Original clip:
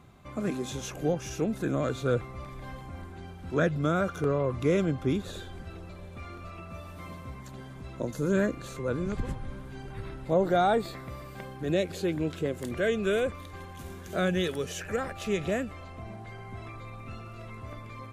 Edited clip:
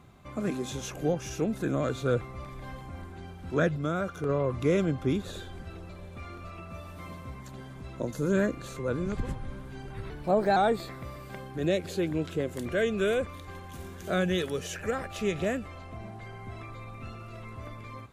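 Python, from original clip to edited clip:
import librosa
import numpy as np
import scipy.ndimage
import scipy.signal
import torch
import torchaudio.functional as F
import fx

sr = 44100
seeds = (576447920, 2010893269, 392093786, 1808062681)

y = fx.edit(x, sr, fx.clip_gain(start_s=3.76, length_s=0.53, db=-3.5),
    fx.speed_span(start_s=10.1, length_s=0.52, speed=1.12), tone=tone)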